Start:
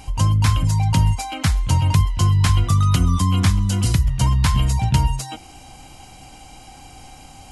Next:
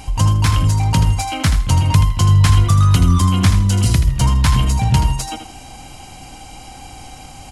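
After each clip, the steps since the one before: in parallel at -5.5 dB: overload inside the chain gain 22.5 dB; on the sum: feedback delay 80 ms, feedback 23%, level -9 dB; trim +1.5 dB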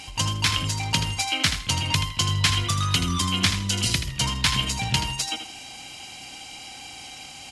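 frequency weighting D; trim -7.5 dB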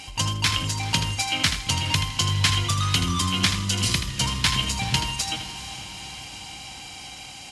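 echo that smears into a reverb 457 ms, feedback 66%, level -14 dB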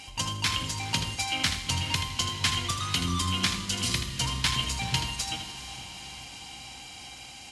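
hum notches 50/100/150/200 Hz; on a send at -10 dB: reverberation RT60 1.6 s, pre-delay 4 ms; on the sum: trim -5 dB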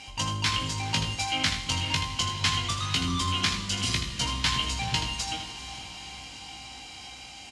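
low-pass 7.8 kHz 12 dB/octave; doubling 19 ms -5.5 dB

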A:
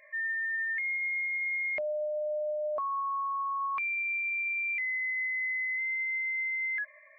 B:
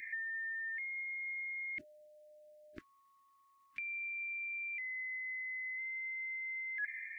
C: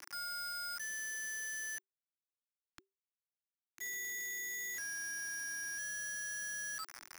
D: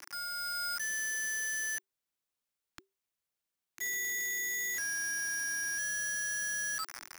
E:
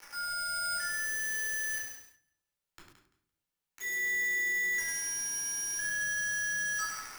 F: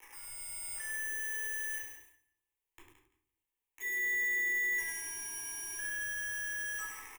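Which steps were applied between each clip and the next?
elliptic band-stop 330–1800 Hz, stop band 40 dB; compressor with a negative ratio -43 dBFS, ratio -1; trim +2 dB
peak limiter -41 dBFS, peak gain reduction 11.5 dB; bit crusher 7-bit; frequency shift -390 Hz
level rider gain up to 4 dB; trim +2.5 dB
thinning echo 170 ms, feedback 19%, high-pass 420 Hz, level -10 dB; simulated room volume 590 m³, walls furnished, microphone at 4.3 m; bit-crushed delay 100 ms, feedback 35%, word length 8-bit, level -5.5 dB; trim -6 dB
static phaser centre 940 Hz, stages 8; delay 150 ms -19.5 dB

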